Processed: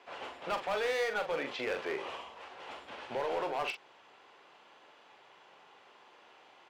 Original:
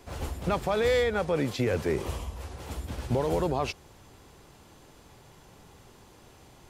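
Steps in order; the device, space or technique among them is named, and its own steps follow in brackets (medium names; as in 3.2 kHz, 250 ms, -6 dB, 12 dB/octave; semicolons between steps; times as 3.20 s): megaphone (band-pass 650–2800 Hz; peaking EQ 2.9 kHz +4.5 dB 0.56 oct; hard clipper -29 dBFS, distortion -11 dB; doubling 43 ms -8 dB)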